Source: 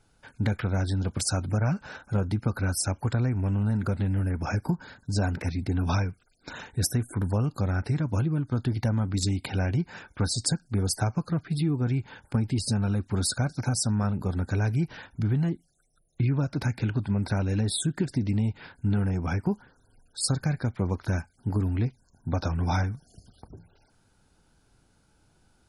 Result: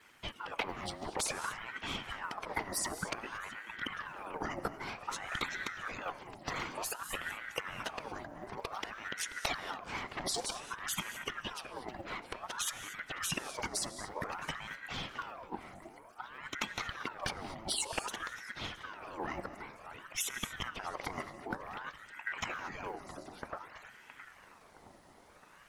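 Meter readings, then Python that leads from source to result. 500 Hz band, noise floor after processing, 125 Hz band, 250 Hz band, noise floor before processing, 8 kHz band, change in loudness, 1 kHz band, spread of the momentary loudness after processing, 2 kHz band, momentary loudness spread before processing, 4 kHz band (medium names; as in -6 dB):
-8.5 dB, -58 dBFS, -27.5 dB, -19.0 dB, -66 dBFS, -6.0 dB, -11.5 dB, -1.5 dB, 11 LU, 0.0 dB, 5 LU, -3.0 dB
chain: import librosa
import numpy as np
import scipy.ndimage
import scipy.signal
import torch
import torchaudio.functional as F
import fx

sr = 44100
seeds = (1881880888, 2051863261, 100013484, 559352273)

y = fx.law_mismatch(x, sr, coded='mu')
y = fx.highpass(y, sr, hz=330.0, slope=6)
y = fx.high_shelf(y, sr, hz=2400.0, db=-9.0)
y = fx.vibrato(y, sr, rate_hz=0.32, depth_cents=7.0)
y = fx.over_compress(y, sr, threshold_db=-38.0, ratio=-1.0)
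y = fx.hpss(y, sr, part='harmonic', gain_db=-16)
y = fx.echo_filtered(y, sr, ms=667, feedback_pct=52, hz=1900.0, wet_db=-10.5)
y = fx.rev_gated(y, sr, seeds[0], gate_ms=260, shape='rising', drr_db=11.5)
y = fx.ring_lfo(y, sr, carrier_hz=1100.0, swing_pct=60, hz=0.54)
y = y * 10.0 ** (5.0 / 20.0)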